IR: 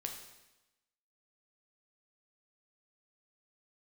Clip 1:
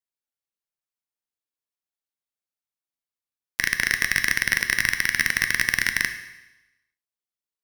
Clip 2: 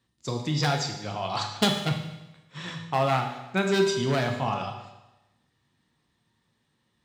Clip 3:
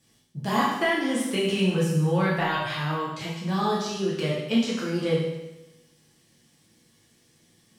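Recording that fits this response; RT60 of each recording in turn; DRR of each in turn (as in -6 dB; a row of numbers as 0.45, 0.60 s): 2; 1.0, 1.0, 1.0 s; 7.5, 2.5, -6.0 dB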